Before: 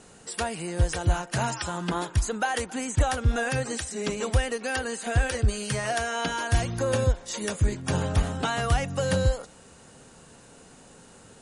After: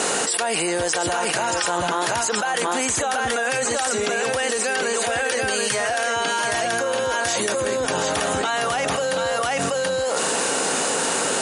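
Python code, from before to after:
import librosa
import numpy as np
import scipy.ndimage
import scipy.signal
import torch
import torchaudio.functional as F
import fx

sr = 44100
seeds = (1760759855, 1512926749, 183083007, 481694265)

y = scipy.signal.sosfilt(scipy.signal.butter(2, 400.0, 'highpass', fs=sr, output='sos'), x)
y = y + 10.0 ** (-4.5 / 20.0) * np.pad(y, (int(731 * sr / 1000.0), 0))[:len(y)]
y = fx.env_flatten(y, sr, amount_pct=100)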